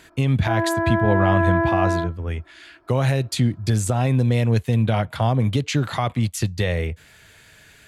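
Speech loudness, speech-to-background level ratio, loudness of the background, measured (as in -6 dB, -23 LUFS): -22.0 LUFS, 0.5 dB, -22.5 LUFS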